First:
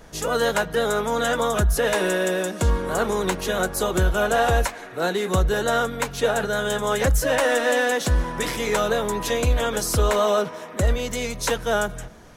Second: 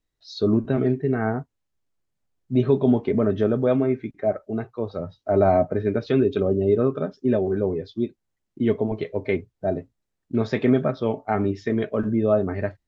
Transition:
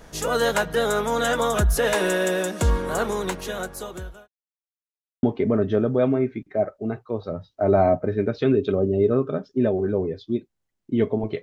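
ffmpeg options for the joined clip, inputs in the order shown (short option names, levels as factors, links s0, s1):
-filter_complex "[0:a]apad=whole_dur=11.42,atrim=end=11.42,asplit=2[s0][s1];[s0]atrim=end=4.28,asetpts=PTS-STARTPTS,afade=t=out:st=2.75:d=1.53[s2];[s1]atrim=start=4.28:end=5.23,asetpts=PTS-STARTPTS,volume=0[s3];[1:a]atrim=start=2.91:end=9.1,asetpts=PTS-STARTPTS,afade=t=in:d=0.004:c=hsin[s4];[s2][s3][s4]concat=n=3:v=0:a=1"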